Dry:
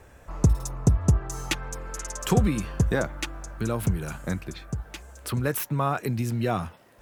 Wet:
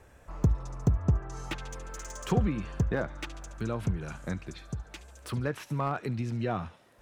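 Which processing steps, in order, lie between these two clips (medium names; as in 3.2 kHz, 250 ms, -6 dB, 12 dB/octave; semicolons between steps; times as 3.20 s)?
feedback echo behind a high-pass 71 ms, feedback 63%, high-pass 2.9 kHz, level -13.5 dB; low-pass that closes with the level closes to 2.6 kHz, closed at -20 dBFS; slew-rate limiter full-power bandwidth 110 Hz; trim -5 dB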